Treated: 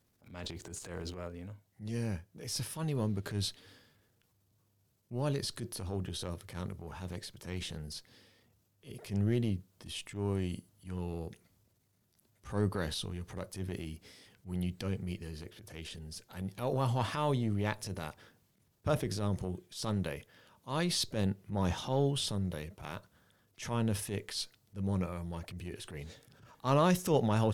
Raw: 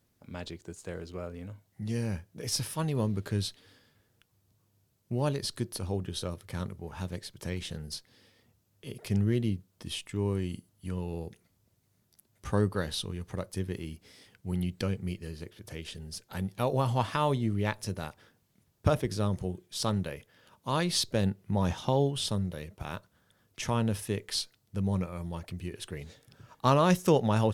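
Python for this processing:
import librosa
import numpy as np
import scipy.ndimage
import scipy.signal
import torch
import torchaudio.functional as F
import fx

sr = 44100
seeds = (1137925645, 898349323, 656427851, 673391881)

y = fx.transient(x, sr, attack_db=-9, sustain_db=fx.steps((0.0, 12.0), (1.26, -1.0), (3.23, 4.0)))
y = y * 10.0 ** (-2.5 / 20.0)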